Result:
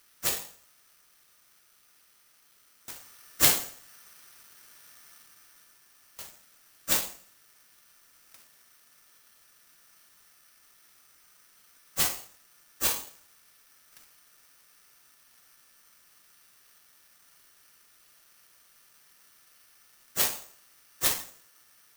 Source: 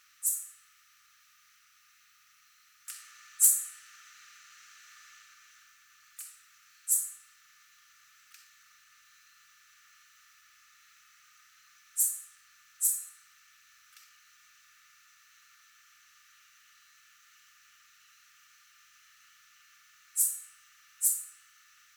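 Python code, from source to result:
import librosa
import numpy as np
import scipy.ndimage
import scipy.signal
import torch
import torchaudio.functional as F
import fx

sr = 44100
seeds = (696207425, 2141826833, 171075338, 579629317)

y = (np.kron(x[::6], np.eye(6)[0]) * 6)[:len(x)]
y = y * librosa.db_to_amplitude(-6.5)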